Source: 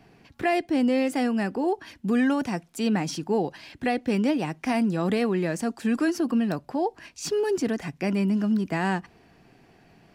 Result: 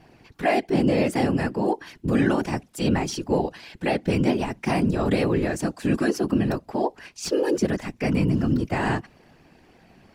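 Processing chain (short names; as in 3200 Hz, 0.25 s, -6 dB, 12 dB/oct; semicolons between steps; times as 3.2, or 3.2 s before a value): whisperiser; gain +2 dB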